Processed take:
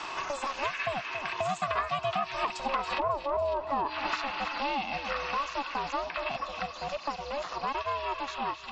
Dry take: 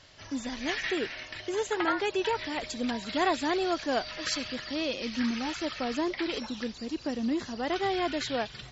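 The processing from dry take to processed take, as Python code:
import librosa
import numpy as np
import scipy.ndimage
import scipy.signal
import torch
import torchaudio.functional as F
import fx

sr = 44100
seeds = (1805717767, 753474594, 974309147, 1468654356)

p1 = fx.doppler_pass(x, sr, speed_mps=18, closest_m=2.5, pass_at_s=3.25)
p2 = fx.highpass(p1, sr, hz=280.0, slope=6)
p3 = fx.env_lowpass_down(p2, sr, base_hz=360.0, full_db=-35.0)
p4 = fx.peak_eq(p3, sr, hz=600.0, db=8.5, octaves=0.68)
p5 = fx.over_compress(p4, sr, threshold_db=-42.0, ratio=-1.0)
p6 = p4 + F.gain(torch.from_numpy(p5), 1.5).numpy()
p7 = p6 * np.sin(2.0 * np.pi * 280.0 * np.arange(len(p6)) / sr)
p8 = fx.low_shelf_res(p7, sr, hz=790.0, db=-6.5, q=1.5)
p9 = fx.small_body(p8, sr, hz=(660.0, 1100.0, 2600.0), ring_ms=25, db=13)
p10 = p9 + fx.echo_feedback(p9, sr, ms=276, feedback_pct=33, wet_db=-15.0, dry=0)
p11 = fx.band_squash(p10, sr, depth_pct=100)
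y = F.gain(torch.from_numpy(p11), 8.5).numpy()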